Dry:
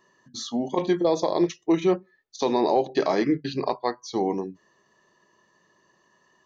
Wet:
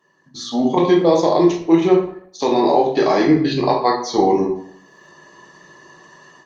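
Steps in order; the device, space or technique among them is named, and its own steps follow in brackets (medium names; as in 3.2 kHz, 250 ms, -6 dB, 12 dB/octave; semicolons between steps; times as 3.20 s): far-field microphone of a smart speaker (reverberation RT60 0.65 s, pre-delay 6 ms, DRR -1 dB; high-pass 92 Hz 24 dB/octave; level rider gain up to 15.5 dB; trim -1 dB; Opus 32 kbps 48 kHz)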